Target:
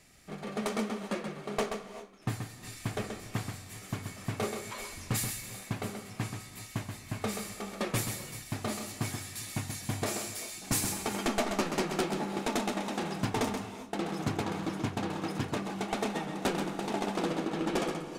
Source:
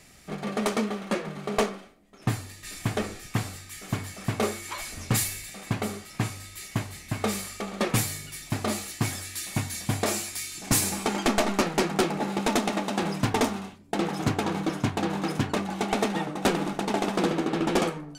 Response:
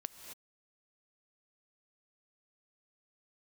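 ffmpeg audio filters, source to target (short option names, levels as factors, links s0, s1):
-filter_complex "[0:a]asplit=2[s0][s1];[1:a]atrim=start_sample=2205,adelay=130[s2];[s1][s2]afir=irnorm=-1:irlink=0,volume=0.708[s3];[s0][s3]amix=inputs=2:normalize=0,volume=0.447"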